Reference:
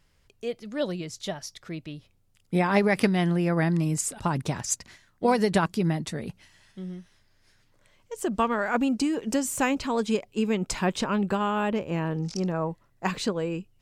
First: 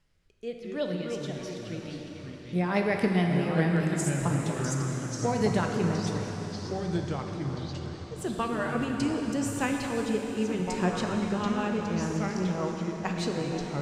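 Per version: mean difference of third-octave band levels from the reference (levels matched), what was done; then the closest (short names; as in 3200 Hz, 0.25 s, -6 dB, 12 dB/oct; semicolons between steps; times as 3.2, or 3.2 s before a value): 10.0 dB: high shelf 12000 Hz -7.5 dB; rotary speaker horn 0.9 Hz, later 5 Hz, at 2.53; plate-style reverb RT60 4.5 s, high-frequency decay 0.95×, DRR 1.5 dB; echoes that change speed 99 ms, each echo -4 st, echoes 3, each echo -6 dB; gain -3.5 dB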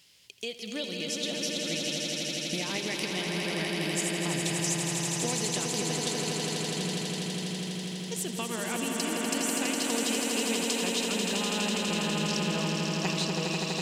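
15.0 dB: HPF 150 Hz; resonant high shelf 2100 Hz +12.5 dB, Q 1.5; compressor 6:1, threshold -33 dBFS, peak gain reduction 22 dB; on a send: swelling echo 82 ms, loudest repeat 8, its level -6 dB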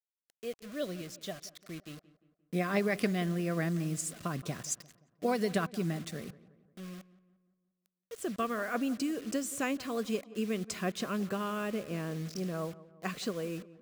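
6.5 dB: HPF 120 Hz 12 dB/oct; bit-crush 7-bit; Butterworth band-stop 890 Hz, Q 3.8; darkening echo 0.175 s, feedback 50%, low-pass 2000 Hz, level -18 dB; gain -7.5 dB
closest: third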